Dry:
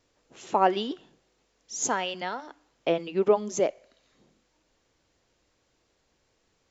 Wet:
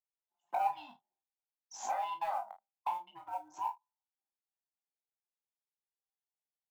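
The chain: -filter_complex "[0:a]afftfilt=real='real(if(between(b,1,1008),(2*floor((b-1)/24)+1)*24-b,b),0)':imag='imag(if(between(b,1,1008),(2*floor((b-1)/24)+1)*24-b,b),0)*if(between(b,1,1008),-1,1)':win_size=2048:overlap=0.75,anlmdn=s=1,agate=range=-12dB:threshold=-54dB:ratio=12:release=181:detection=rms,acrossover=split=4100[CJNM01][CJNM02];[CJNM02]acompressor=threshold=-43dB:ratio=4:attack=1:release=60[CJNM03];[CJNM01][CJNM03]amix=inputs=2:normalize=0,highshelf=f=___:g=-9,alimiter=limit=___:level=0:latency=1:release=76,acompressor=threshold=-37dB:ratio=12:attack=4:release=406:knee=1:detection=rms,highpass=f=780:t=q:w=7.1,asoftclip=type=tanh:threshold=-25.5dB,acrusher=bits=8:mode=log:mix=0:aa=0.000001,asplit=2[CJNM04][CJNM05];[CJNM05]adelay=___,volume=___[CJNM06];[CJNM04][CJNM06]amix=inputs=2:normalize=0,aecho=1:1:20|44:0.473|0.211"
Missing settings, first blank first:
2200, -15.5dB, 33, -10dB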